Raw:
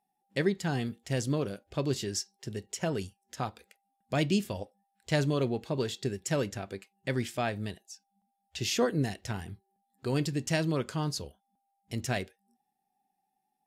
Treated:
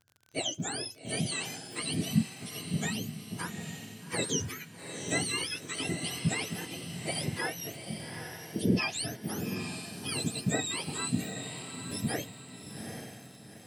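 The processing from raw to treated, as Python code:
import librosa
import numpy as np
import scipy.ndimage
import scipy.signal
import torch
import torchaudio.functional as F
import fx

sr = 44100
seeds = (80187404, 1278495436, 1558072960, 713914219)

y = fx.octave_mirror(x, sr, pivot_hz=1100.0)
y = fx.echo_diffused(y, sr, ms=811, feedback_pct=41, wet_db=-7)
y = fx.dmg_crackle(y, sr, seeds[0], per_s=40.0, level_db=-43.0)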